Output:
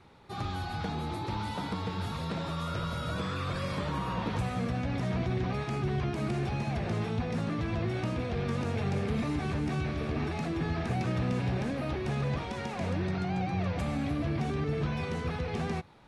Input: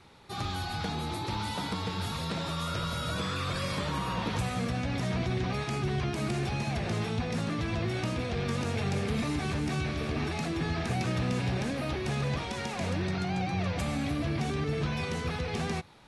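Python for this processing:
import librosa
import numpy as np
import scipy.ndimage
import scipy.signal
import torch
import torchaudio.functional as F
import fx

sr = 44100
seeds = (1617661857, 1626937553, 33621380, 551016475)

y = fx.high_shelf(x, sr, hz=2800.0, db=-9.5)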